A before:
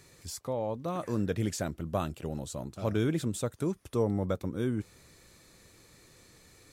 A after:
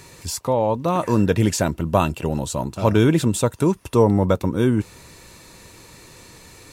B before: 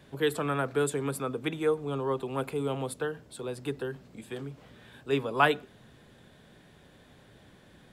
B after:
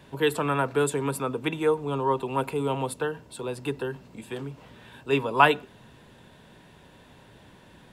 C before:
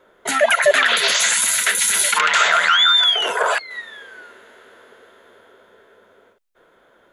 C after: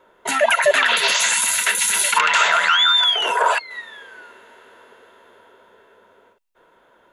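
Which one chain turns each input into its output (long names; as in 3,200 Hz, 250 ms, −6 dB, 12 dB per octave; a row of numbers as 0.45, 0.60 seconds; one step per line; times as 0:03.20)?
hollow resonant body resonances 950/2,700 Hz, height 11 dB, ringing for 40 ms
normalise the peak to −3 dBFS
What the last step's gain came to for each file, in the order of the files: +12.5, +3.5, −1.5 decibels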